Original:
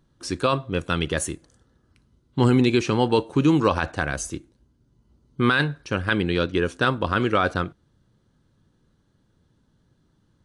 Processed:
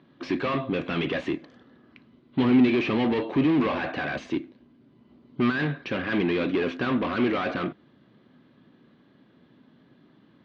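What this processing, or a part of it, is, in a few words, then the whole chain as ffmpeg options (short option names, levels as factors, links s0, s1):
overdrive pedal into a guitar cabinet: -filter_complex "[0:a]asplit=2[s0][s1];[s1]highpass=f=720:p=1,volume=39.8,asoftclip=type=tanh:threshold=0.422[s2];[s0][s2]amix=inputs=2:normalize=0,lowpass=f=1400:p=1,volume=0.501,highpass=91,equalizer=f=94:t=q:w=4:g=-8,equalizer=f=250:t=q:w=4:g=7,equalizer=f=490:t=q:w=4:g=-5,equalizer=f=890:t=q:w=4:g=-7,equalizer=f=1400:t=q:w=4:g=-8,equalizer=f=2300:t=q:w=4:g=3,lowpass=f=3900:w=0.5412,lowpass=f=3900:w=1.3066,volume=0.398"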